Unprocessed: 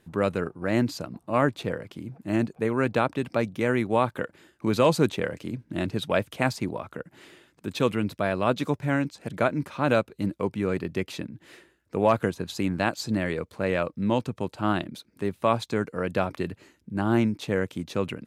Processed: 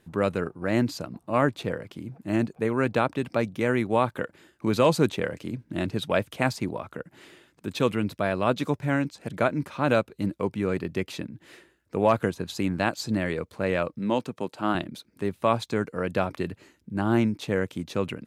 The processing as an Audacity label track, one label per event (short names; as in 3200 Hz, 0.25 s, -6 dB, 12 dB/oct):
13.990000	14.750000	HPF 190 Hz